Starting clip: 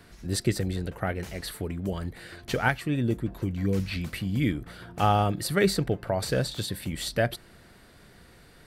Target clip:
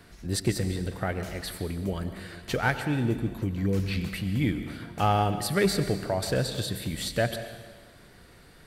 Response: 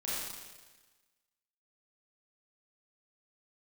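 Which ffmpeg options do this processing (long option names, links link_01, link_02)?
-filter_complex "[0:a]asoftclip=type=tanh:threshold=-13dB,asplit=2[link_01][link_02];[1:a]atrim=start_sample=2205,adelay=94[link_03];[link_02][link_03]afir=irnorm=-1:irlink=0,volume=-13.5dB[link_04];[link_01][link_04]amix=inputs=2:normalize=0"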